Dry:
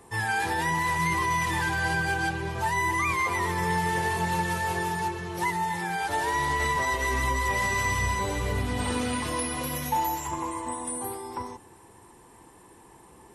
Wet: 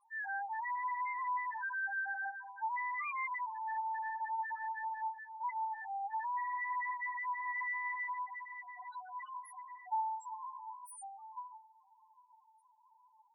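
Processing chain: tracing distortion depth 0.098 ms; steep high-pass 690 Hz 72 dB/oct; on a send: darkening echo 0.8 s, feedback 65%, low-pass 1800 Hz, level -20 dB; on the sum: loudest bins only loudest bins 2; gain -6.5 dB

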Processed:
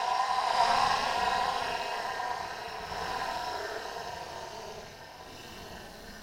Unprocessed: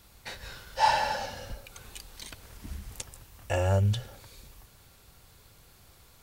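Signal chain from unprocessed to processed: tremolo saw down 4.6 Hz, depth 55%; Paulstretch 11×, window 0.05 s, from 0.82; ring modulator 120 Hz

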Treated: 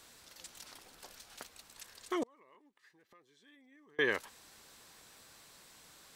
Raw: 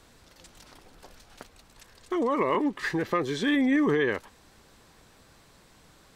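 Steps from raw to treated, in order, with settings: tilt +2.5 dB/oct; 2.23–3.99 flipped gate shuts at -28 dBFS, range -33 dB; gain -3.5 dB

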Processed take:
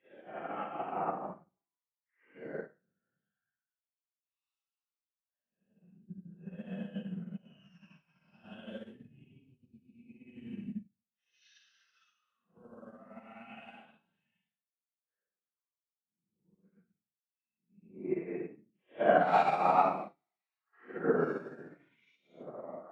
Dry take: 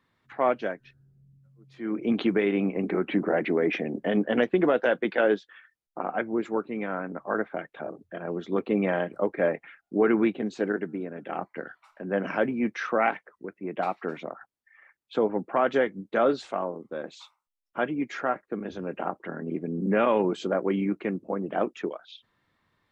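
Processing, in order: spectral gain 11.6–13.65, 220–2500 Hz -17 dB; Paulstretch 7.5×, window 0.05 s, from 11.25; upward expander 2.5:1, over -48 dBFS; gain +4.5 dB

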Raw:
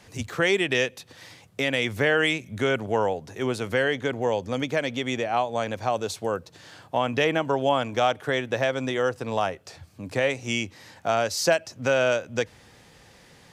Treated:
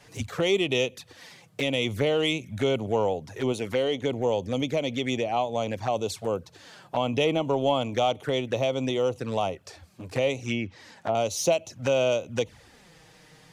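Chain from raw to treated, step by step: 3.52–4.02 bell 120 Hz -5.5 dB 1.1 oct; 10.44–11.15 treble ducked by the level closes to 960 Hz, closed at -20 dBFS; in parallel at -5 dB: soft clip -21 dBFS, distortion -10 dB; on the sum: envelope flanger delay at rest 7.8 ms, full sweep at -20.5 dBFS; gain -2 dB

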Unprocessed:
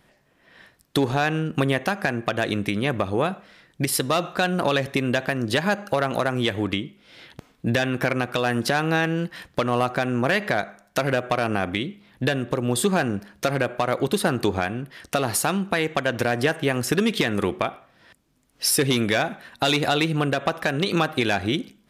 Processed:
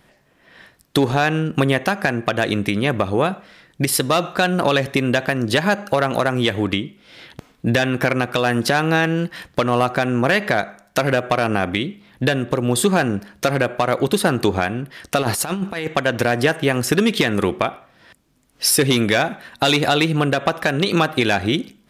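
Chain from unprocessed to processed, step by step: 15.22–15.88 negative-ratio compressor -26 dBFS, ratio -0.5; gain +4.5 dB

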